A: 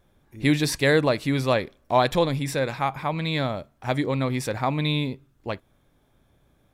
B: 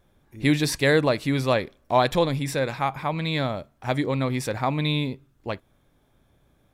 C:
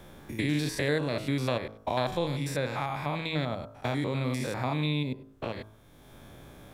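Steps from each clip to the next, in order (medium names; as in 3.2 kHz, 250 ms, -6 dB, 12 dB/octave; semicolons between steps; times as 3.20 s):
no audible change
spectrogram pixelated in time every 100 ms; de-hum 53.73 Hz, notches 30; three bands compressed up and down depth 70%; trim -4 dB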